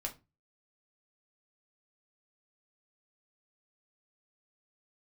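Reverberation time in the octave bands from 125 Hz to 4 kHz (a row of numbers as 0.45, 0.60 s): 0.45, 0.35, 0.30, 0.25, 0.20, 0.20 s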